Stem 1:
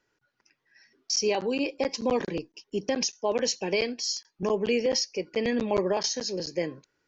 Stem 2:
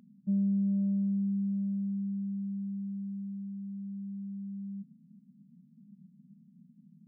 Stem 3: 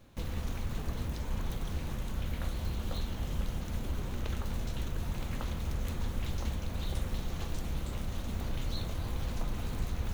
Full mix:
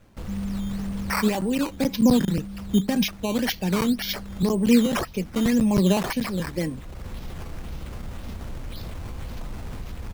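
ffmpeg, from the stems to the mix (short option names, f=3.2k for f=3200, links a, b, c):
-filter_complex "[0:a]aphaser=in_gain=1:out_gain=1:delay=5:decay=0.36:speed=0.5:type=sinusoidal,lowshelf=f=290:t=q:w=1.5:g=11,volume=0.5dB,asplit=2[a][b];[1:a]asplit=2[c][d];[d]afreqshift=-0.55[e];[c][e]amix=inputs=2:normalize=1,volume=-1.5dB[f];[2:a]alimiter=level_in=4.5dB:limit=-24dB:level=0:latency=1:release=37,volume=-4.5dB,volume=2.5dB[g];[b]apad=whole_len=451432[h];[g][h]sidechaincompress=threshold=-30dB:ratio=8:attack=8.3:release=621[i];[a][f][i]amix=inputs=3:normalize=0,acrusher=samples=9:mix=1:aa=0.000001:lfo=1:lforange=9:lforate=1.9"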